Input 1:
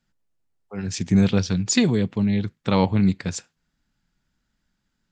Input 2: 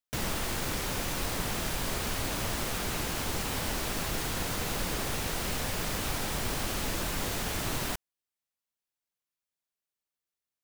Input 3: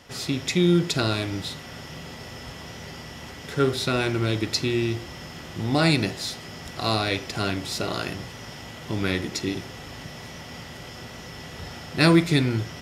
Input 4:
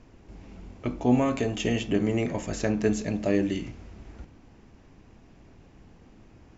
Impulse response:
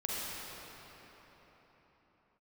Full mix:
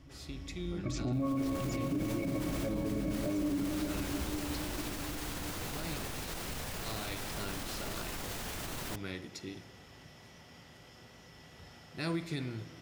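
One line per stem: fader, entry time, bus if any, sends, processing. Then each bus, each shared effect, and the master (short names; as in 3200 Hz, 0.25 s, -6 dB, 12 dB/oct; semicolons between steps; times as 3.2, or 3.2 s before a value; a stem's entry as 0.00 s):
-15.0 dB, 0.00 s, bus A, no send, dry
-5.0 dB, 1.00 s, bus A, no send, dry
-16.5 dB, 0.00 s, no bus, send -20 dB, auto duck -9 dB, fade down 1.05 s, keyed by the fourth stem
+2.5 dB, 0.00 s, no bus, send -4 dB, notch 570 Hz, Q 15; octave resonator C#, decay 0.11 s
bus A: 0.0 dB, negative-ratio compressor -37 dBFS, ratio -1; limiter -30.5 dBFS, peak gain reduction 6.5 dB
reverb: on, RT60 4.4 s, pre-delay 37 ms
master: limiter -26 dBFS, peak gain reduction 12.5 dB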